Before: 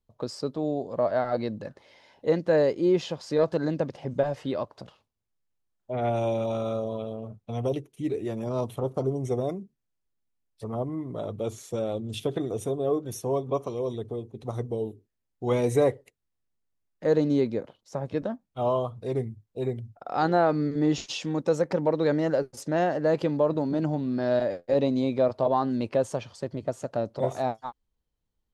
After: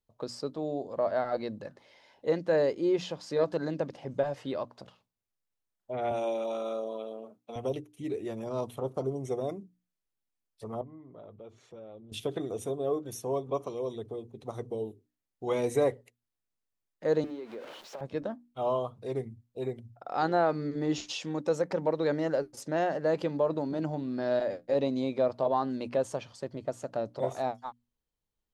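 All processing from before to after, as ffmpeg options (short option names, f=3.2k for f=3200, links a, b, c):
-filter_complex "[0:a]asettb=1/sr,asplit=3[a][b][c];[a]atrim=end=6.114[d];[b]atrim=start=6.11:end=7.56,asetpts=PTS-STARTPTS,afade=t=in:d=0.004:c=qsin,afade=t=out:st=1.446:d=0.004:c=qsin,highpass=f=240:w=0.5412,highpass=f=240:w=1.3066,highshelf=f=10k:g=3[e];[c]atrim=start=7.556[f];[d][e]acrossfade=d=0.004:c1=hsin:c2=qsin[g];[g][f]acrossfade=d=0.004:c1=qsin:c2=hsin,asettb=1/sr,asplit=3[h][i][j];[h]atrim=end=10.814[k];[i]atrim=start=10.81:end=12.12,asetpts=PTS-STARTPTS,afade=t=in:d=0.004:c=qsin,afade=t=out:st=1.306:d=0.004:c=qsin,lowpass=2.7k,acompressor=threshold=-50dB:ratio=2:attack=3.2:release=140:knee=1:detection=peak[l];[j]atrim=start=12.116[m];[k][l]acrossfade=d=0.004:c1=hsin:c2=qsin[n];[n][m]acrossfade=d=0.004:c1=qsin:c2=hsin,asettb=1/sr,asplit=3[o][p][q];[o]atrim=end=17.244[r];[p]atrim=start=17.24:end=18.01,asetpts=PTS-STARTPTS,afade=t=in:d=0.004:c=qsin,afade=t=out:st=0.766:d=0.004:c=qsin,aeval=exprs='val(0)+0.5*0.0158*sgn(val(0))':c=same,acrossover=split=270 4300:gain=0.1 1 0.224[s][t][u];[s][t][u]amix=inputs=3:normalize=0,acompressor=threshold=-32dB:ratio=10:attack=3.2:release=140:knee=1:detection=peak[v];[q]atrim=start=18.006[w];[r][v]acrossfade=d=0.004:c1=hsin:c2=qsin[x];[x][w]acrossfade=d=0.004:c1=qsin:c2=hsin,lowshelf=f=210:g=-5.5,bandreject=f=60:t=h:w=6,bandreject=f=120:t=h:w=6,bandreject=f=180:t=h:w=6,bandreject=f=240:t=h:w=6,bandreject=f=300:t=h:w=6,volume=-3dB"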